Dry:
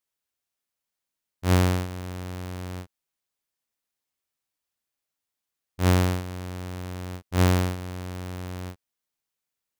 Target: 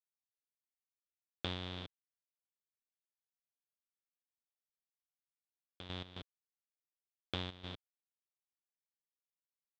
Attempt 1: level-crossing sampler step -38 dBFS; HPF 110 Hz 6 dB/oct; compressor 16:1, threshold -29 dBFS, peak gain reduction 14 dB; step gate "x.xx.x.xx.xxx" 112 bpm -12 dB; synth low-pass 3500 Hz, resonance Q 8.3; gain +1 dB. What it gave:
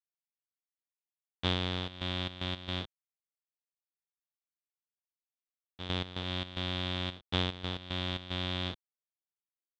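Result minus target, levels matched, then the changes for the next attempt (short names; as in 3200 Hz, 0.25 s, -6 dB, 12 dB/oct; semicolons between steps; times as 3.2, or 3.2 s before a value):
compressor: peak gain reduction -10.5 dB; level-crossing sampler: distortion -9 dB
change: level-crossing sampler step -27.5 dBFS; change: compressor 16:1, threshold -40 dBFS, peak gain reduction 24.5 dB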